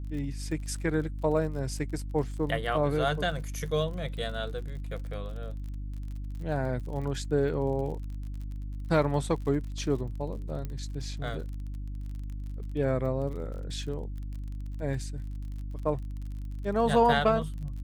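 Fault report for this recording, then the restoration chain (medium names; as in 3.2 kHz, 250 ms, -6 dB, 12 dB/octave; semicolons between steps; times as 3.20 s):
crackle 42 per s -39 dBFS
hum 50 Hz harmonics 6 -36 dBFS
10.65 s: pop -23 dBFS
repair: de-click; de-hum 50 Hz, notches 6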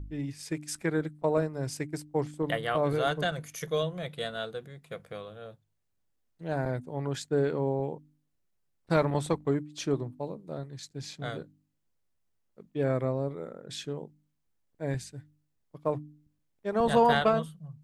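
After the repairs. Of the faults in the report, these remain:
nothing left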